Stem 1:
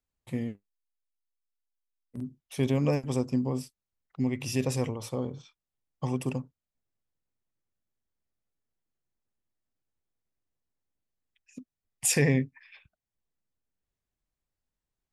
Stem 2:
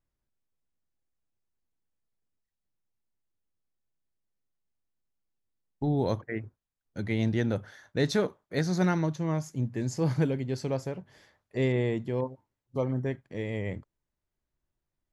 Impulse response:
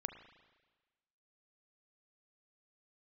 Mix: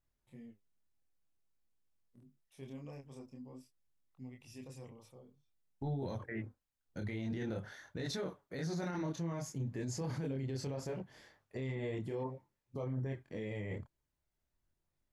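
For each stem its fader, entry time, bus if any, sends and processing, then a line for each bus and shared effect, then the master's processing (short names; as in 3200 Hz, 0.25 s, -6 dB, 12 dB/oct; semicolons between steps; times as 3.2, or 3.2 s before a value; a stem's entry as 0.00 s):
-19.0 dB, 0.00 s, no send, auto duck -24 dB, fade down 0.75 s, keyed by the second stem
+2.0 dB, 0.00 s, no send, dry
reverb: off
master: chorus voices 2, 0.5 Hz, delay 26 ms, depth 4.2 ms; limiter -31.5 dBFS, peak gain reduction 17.5 dB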